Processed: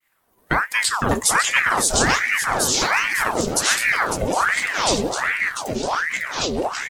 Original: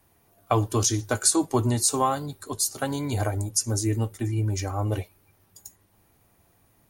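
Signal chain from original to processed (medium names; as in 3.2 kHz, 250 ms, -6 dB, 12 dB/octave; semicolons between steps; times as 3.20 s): on a send: delay 552 ms -8 dB; on the sum: expander -57 dBFS; ever faster or slower copies 376 ms, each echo -4 st, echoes 3; ring modulator with a swept carrier 1.2 kHz, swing 75%, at 1.3 Hz; trim +5 dB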